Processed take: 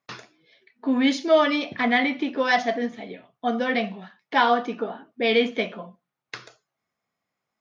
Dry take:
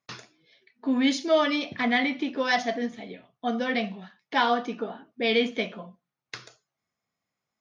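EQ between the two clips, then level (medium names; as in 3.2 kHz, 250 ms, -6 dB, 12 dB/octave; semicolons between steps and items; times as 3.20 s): bass shelf 200 Hz -7 dB; treble shelf 3.9 kHz -9 dB; +5.0 dB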